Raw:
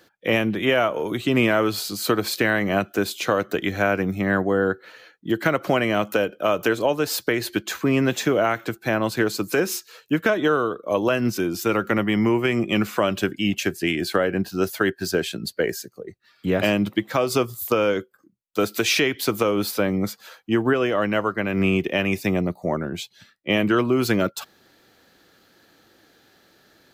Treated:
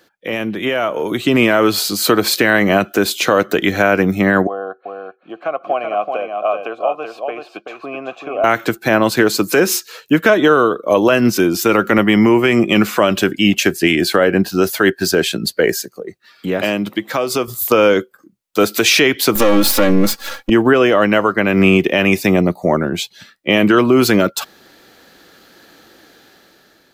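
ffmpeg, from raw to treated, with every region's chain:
-filter_complex "[0:a]asettb=1/sr,asplit=3[a][b][c];[a]atrim=end=4.474[d];[b]atrim=start=4.47:end=8.44,asetpts=PTS-STARTPTS,afade=t=in:d=0.004:c=qsin,afade=t=out:st=3.966:d=0.004:c=qsin,asplit=3[e][f][g];[e]bandpass=f=730:t=q:w=8,volume=0dB[h];[f]bandpass=f=1.09k:t=q:w=8,volume=-6dB[i];[g]bandpass=f=2.44k:t=q:w=8,volume=-9dB[j];[h][i][j]amix=inputs=3:normalize=0,highshelf=f=3.4k:g=-8,aecho=1:1:382:0.531,atrim=end_sample=175077[k];[c]atrim=start=8.436[l];[d][k]acrossfade=d=0.004:c1=hsin:c2=qsin[m];[m][l]acrossfade=d=0.004:c1=qsin:c2=hsin,asettb=1/sr,asplit=3[n][o][p];[n]atrim=end=15.814[q];[o]atrim=start=15.81:end=17.48,asetpts=PTS-STARTPTS,afade=t=in:d=0.004:c=qsin,afade=t=out:st=1.666:d=0.004:c=qsin,highpass=f=130:p=1,acompressor=threshold=-36dB:ratio=1.5:attack=3.2:release=140:knee=1:detection=peak[r];[p]atrim=start=17.476[s];[q][r]acrossfade=d=0.004:c1=hsin:c2=qsin[t];[t][s]acrossfade=d=0.004:c1=qsin:c2=hsin,asettb=1/sr,asplit=3[u][v][w];[u]atrim=end=19.354[x];[v]atrim=start=19.35:end=20.5,asetpts=PTS-STARTPTS,afade=t=in:d=0.004:c=qsin,afade=t=out:st=1.146:d=0.004:c=qsin,aeval=exprs='if(lt(val(0),0),0.251*val(0),val(0))':c=same,aecho=1:1:3.6:0.74,atrim=end_sample=50715,acontrast=77[y];[w]atrim=start=20.496[z];[x][y]acrossfade=d=0.004:c1=hsin:c2=qsin[aa];[aa][z]acrossfade=d=0.004:c1=qsin:c2=hsin,alimiter=limit=-12.5dB:level=0:latency=1:release=30,equalizer=f=100:t=o:w=1.1:g=-6,dynaudnorm=f=460:g=5:m=9.5dB,volume=2dB"

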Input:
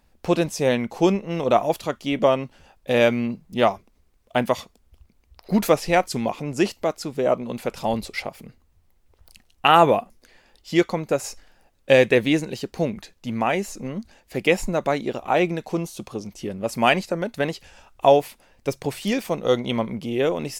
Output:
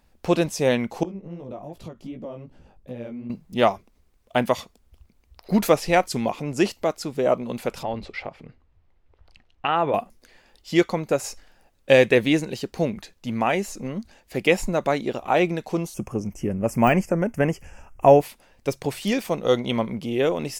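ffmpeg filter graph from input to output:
-filter_complex "[0:a]asettb=1/sr,asplit=3[a][b][c];[a]atrim=end=1.034[d];[b]atrim=start=1.03:end=3.3,asetpts=PTS-STARTPTS,afade=t=in:d=0.004:c=qsin,afade=t=out:st=2.266:d=0.004:c=qsin,tiltshelf=f=670:g=8.5,acompressor=threshold=-31dB:ratio=5:attack=3.2:release=140:knee=1:detection=peak,flanger=delay=15.5:depth=5.8:speed=2.6[e];[c]atrim=start=3.296[f];[d][e]acrossfade=d=0.004:c1=hsin:c2=qsin[g];[g][f]acrossfade=d=0.004:c1=qsin:c2=hsin,asettb=1/sr,asplit=3[h][i][j];[h]atrim=end=7.834[k];[i]atrim=start=7.83:end=9.94,asetpts=PTS-STARTPTS,afade=t=in:d=0.004:c=qsin,afade=t=out:st=2.106:d=0.004:c=qsin,bandreject=f=210:w=5.6,acompressor=threshold=-30dB:ratio=1.5:attack=3.2:release=140:knee=1:detection=peak,lowpass=3k[l];[j]atrim=start=9.936[m];[k][l]acrossfade=d=0.004:c1=hsin:c2=qsin[n];[n][m]acrossfade=d=0.004:c1=qsin:c2=hsin,asettb=1/sr,asplit=3[o][p][q];[o]atrim=end=15.944[r];[p]atrim=start=15.94:end=18.21,asetpts=PTS-STARTPTS,afade=t=in:d=0.004:c=qsin,afade=t=out:st=2.266:d=0.004:c=qsin,deesser=0.6,asuperstop=centerf=3900:order=4:qfactor=1.4,lowshelf=f=230:g=10[s];[q]atrim=start=18.206[t];[r][s]acrossfade=d=0.004:c1=hsin:c2=qsin[u];[u][t]acrossfade=d=0.004:c1=qsin:c2=hsin"

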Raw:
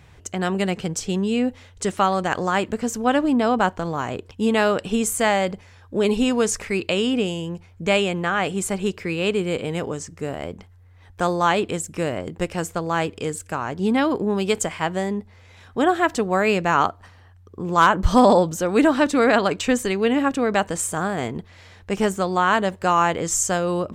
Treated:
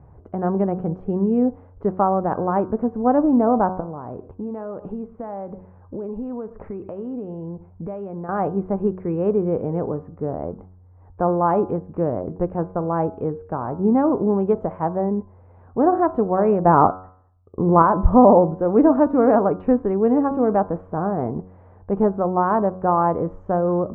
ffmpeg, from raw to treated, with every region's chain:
-filter_complex "[0:a]asettb=1/sr,asplit=3[a][b][c];[a]atrim=end=3.804[d];[b]atrim=start=3.8:end=8.29,asetpts=PTS-STARTPTS,afade=t=in:d=0.004:c=qsin,afade=t=out:st=4.486:d=0.004:c=qsin,aecho=1:1:114:0.075,atrim=end_sample=198009,acompressor=threshold=-30dB:ratio=5:attack=3.2:release=140:knee=1:detection=peak[e];[c]atrim=start=8.286[f];[d][e]acrossfade=d=0.004:c1=hsin:c2=qsin[g];[g][f]acrossfade=d=0.004:c1=qsin:c2=hsin,asettb=1/sr,asplit=3[h][i][j];[h]atrim=end=16.654[k];[i]atrim=start=16.65:end=17.82,asetpts=PTS-STARTPTS,afade=t=in:d=0.004:c=qsin,afade=t=out:st=1.166:d=0.004:c=qsin,acontrast=63,agate=range=-33dB:threshold=-33dB:ratio=3:release=100:detection=peak,bass=f=250:g=0,treble=f=4k:g=-6[l];[j]atrim=start=17.816[m];[k][l]acrossfade=d=0.004:c1=hsin:c2=qsin[n];[n][m]acrossfade=d=0.004:c1=qsin:c2=hsin,lowpass=f=1k:w=0.5412,lowpass=f=1k:w=1.3066,bandreject=f=92.68:t=h:w=4,bandreject=f=185.36:t=h:w=4,bandreject=f=278.04:t=h:w=4,bandreject=f=370.72:t=h:w=4,bandreject=f=463.4:t=h:w=4,bandreject=f=556.08:t=h:w=4,bandreject=f=648.76:t=h:w=4,bandreject=f=741.44:t=h:w=4,bandreject=f=834.12:t=h:w=4,bandreject=f=926.8:t=h:w=4,bandreject=f=1.01948k:t=h:w=4,bandreject=f=1.11216k:t=h:w=4,bandreject=f=1.20484k:t=h:w=4,bandreject=f=1.29752k:t=h:w=4,bandreject=f=1.3902k:t=h:w=4,bandreject=f=1.48288k:t=h:w=4,bandreject=f=1.57556k:t=h:w=4,volume=3dB"

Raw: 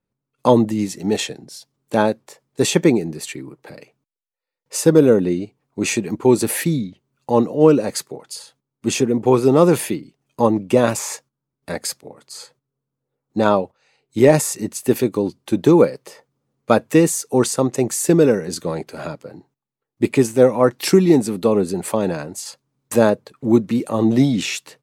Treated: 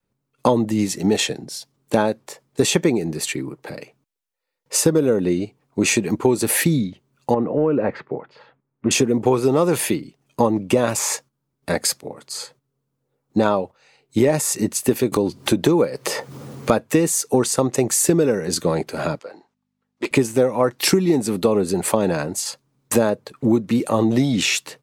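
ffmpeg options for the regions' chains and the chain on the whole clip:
-filter_complex "[0:a]asettb=1/sr,asplit=3[a][b][c];[a]atrim=end=7.344[d];[b]atrim=start=7.34:end=8.91,asetpts=PTS-STARTPTS,afade=t=in:d=0.004:c=qsin,afade=t=out:st=1.566:d=0.004:c=qsin,acompressor=threshold=-17dB:ratio=4:attack=3.2:release=140:knee=1:detection=peak,lowpass=f=2.2k:w=0.5412,lowpass=f=2.2k:w=1.3066[e];[c]atrim=start=8.906[f];[d][e]acrossfade=d=0.004:c1=hsin:c2=qsin[g];[g][f]acrossfade=d=0.004:c1=qsin:c2=hsin,asettb=1/sr,asplit=3[h][i][j];[h]atrim=end=15.124[k];[i]atrim=start=15.12:end=16.72,asetpts=PTS-STARTPTS,afade=t=in:d=0.004:c=qsin,afade=t=out:st=1.596:d=0.004:c=qsin,highpass=45,acompressor=mode=upward:threshold=-16dB:ratio=2.5:attack=3.2:release=140:knee=2.83:detection=peak[l];[j]atrim=start=16.716[m];[k][l]acrossfade=d=0.004:c1=hsin:c2=qsin[n];[n][m]acrossfade=d=0.004:c1=qsin:c2=hsin,asettb=1/sr,asplit=3[o][p][q];[o]atrim=end=19.194[r];[p]atrim=start=19.19:end=20.11,asetpts=PTS-STARTPTS,afade=t=in:d=0.004:c=qsin,afade=t=out:st=0.916:d=0.004:c=qsin,aeval=exprs='val(0)+0.002*(sin(2*PI*50*n/s)+sin(2*PI*2*50*n/s)/2+sin(2*PI*3*50*n/s)/3+sin(2*PI*4*50*n/s)/4+sin(2*PI*5*50*n/s)/5)':c=same,highpass=600,lowpass=6.4k,volume=23dB,asoftclip=hard,volume=-23dB[s];[q]atrim=start=20.106[t];[r][s]acrossfade=d=0.004:c1=hsin:c2=qsin[u];[u][t]acrossfade=d=0.004:c1=qsin:c2=hsin,adynamicequalizer=threshold=0.0501:dfrequency=220:dqfactor=0.73:tfrequency=220:tqfactor=0.73:attack=5:release=100:ratio=0.375:range=2.5:mode=cutabove:tftype=bell,acompressor=threshold=-19dB:ratio=6,volume=5.5dB"

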